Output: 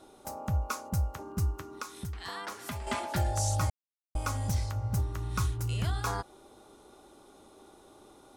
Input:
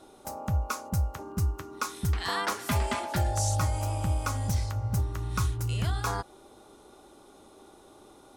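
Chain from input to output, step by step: 1.73–2.87 compressor 4:1, threshold -35 dBFS, peak gain reduction 11 dB; 3.7–4.15 mute; gain -2 dB

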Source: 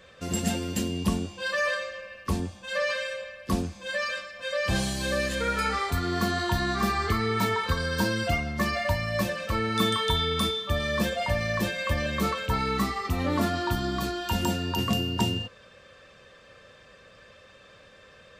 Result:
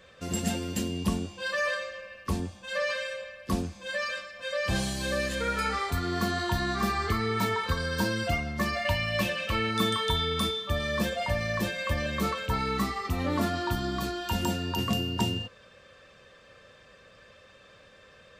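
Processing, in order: 8.85–9.71 bell 2800 Hz +11 dB 0.67 oct; gain -2 dB

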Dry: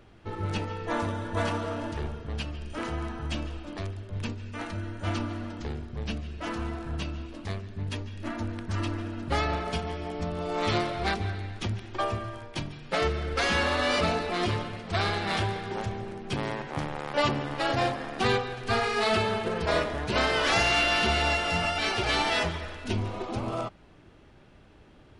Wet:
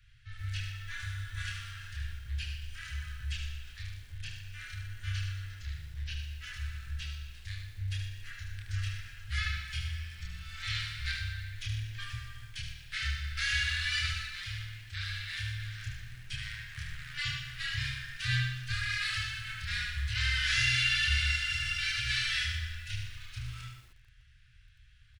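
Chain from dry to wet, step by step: Chebyshev band-stop 120–1600 Hz, order 4; chorus voices 6, 0.44 Hz, delay 28 ms, depth 3.9 ms; 14.28–15.6 resonator 590 Hz, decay 0.56 s, mix 40%; on a send: feedback echo 74 ms, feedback 18%, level -6 dB; on the sum: lo-fi delay 0.121 s, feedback 35%, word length 9-bit, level -9 dB

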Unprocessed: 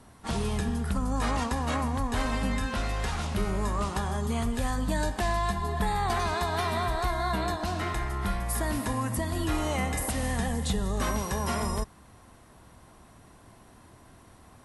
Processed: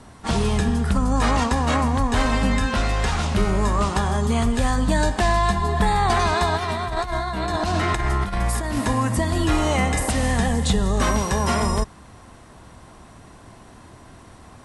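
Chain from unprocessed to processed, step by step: LPF 9400 Hz 24 dB/oct; 6.56–8.77 negative-ratio compressor -31 dBFS, ratio -0.5; gain +8.5 dB

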